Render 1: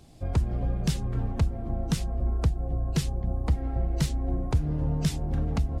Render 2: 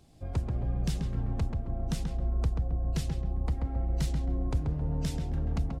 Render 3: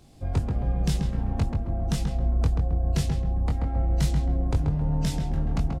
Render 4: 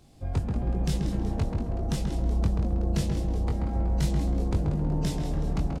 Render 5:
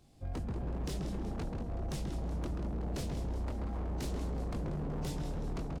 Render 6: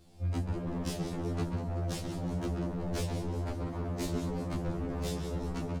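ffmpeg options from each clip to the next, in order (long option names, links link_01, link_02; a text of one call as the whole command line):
ffmpeg -i in.wav -filter_complex "[0:a]asplit=2[link_01][link_02];[link_02]adelay=134,lowpass=frequency=1900:poles=1,volume=-3.5dB,asplit=2[link_03][link_04];[link_04]adelay=134,lowpass=frequency=1900:poles=1,volume=0.35,asplit=2[link_05][link_06];[link_06]adelay=134,lowpass=frequency=1900:poles=1,volume=0.35,asplit=2[link_07][link_08];[link_08]adelay=134,lowpass=frequency=1900:poles=1,volume=0.35,asplit=2[link_09][link_10];[link_10]adelay=134,lowpass=frequency=1900:poles=1,volume=0.35[link_11];[link_01][link_03][link_05][link_07][link_09][link_11]amix=inputs=6:normalize=0,volume=-6.5dB" out.wav
ffmpeg -i in.wav -filter_complex "[0:a]asplit=2[link_01][link_02];[link_02]adelay=21,volume=-5dB[link_03];[link_01][link_03]amix=inputs=2:normalize=0,volume=5dB" out.wav
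ffmpeg -i in.wav -filter_complex "[0:a]asplit=6[link_01][link_02][link_03][link_04][link_05][link_06];[link_02]adelay=187,afreqshift=140,volume=-11dB[link_07];[link_03]adelay=374,afreqshift=280,volume=-16.8dB[link_08];[link_04]adelay=561,afreqshift=420,volume=-22.7dB[link_09];[link_05]adelay=748,afreqshift=560,volume=-28.5dB[link_10];[link_06]adelay=935,afreqshift=700,volume=-34.4dB[link_11];[link_01][link_07][link_08][link_09][link_10][link_11]amix=inputs=6:normalize=0,volume=-2.5dB" out.wav
ffmpeg -i in.wav -af "aeval=exprs='0.0631*(abs(mod(val(0)/0.0631+3,4)-2)-1)':channel_layout=same,volume=-7dB" out.wav
ffmpeg -i in.wav -af "afftfilt=real='re*2*eq(mod(b,4),0)':imag='im*2*eq(mod(b,4),0)':win_size=2048:overlap=0.75,volume=7dB" out.wav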